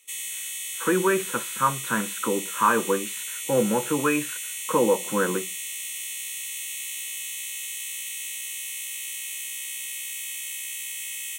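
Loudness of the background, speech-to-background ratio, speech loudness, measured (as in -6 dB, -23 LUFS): -30.5 LUFS, 5.5 dB, -25.0 LUFS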